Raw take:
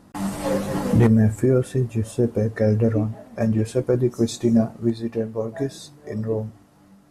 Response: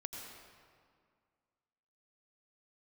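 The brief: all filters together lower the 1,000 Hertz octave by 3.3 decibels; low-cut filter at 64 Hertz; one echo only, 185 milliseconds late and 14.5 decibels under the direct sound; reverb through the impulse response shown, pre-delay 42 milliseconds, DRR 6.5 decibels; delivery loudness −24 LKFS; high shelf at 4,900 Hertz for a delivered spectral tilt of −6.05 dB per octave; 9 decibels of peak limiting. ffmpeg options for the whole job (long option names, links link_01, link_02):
-filter_complex "[0:a]highpass=64,equalizer=frequency=1000:width_type=o:gain=-5,highshelf=frequency=4900:gain=8,alimiter=limit=-15dB:level=0:latency=1,aecho=1:1:185:0.188,asplit=2[link_01][link_02];[1:a]atrim=start_sample=2205,adelay=42[link_03];[link_02][link_03]afir=irnorm=-1:irlink=0,volume=-5dB[link_04];[link_01][link_04]amix=inputs=2:normalize=0,volume=1.5dB"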